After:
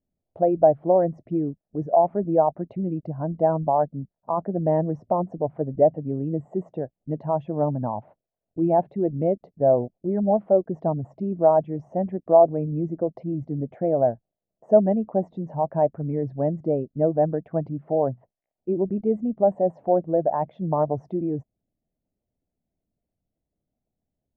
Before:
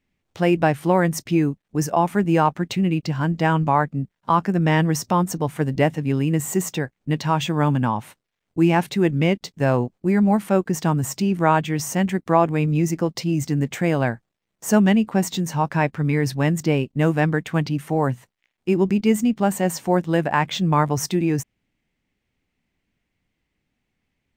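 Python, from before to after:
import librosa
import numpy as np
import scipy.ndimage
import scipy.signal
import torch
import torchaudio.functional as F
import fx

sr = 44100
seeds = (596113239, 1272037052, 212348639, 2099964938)

y = fx.envelope_sharpen(x, sr, power=1.5)
y = fx.lowpass_res(y, sr, hz=650.0, q=5.1)
y = F.gain(torch.from_numpy(y), -8.0).numpy()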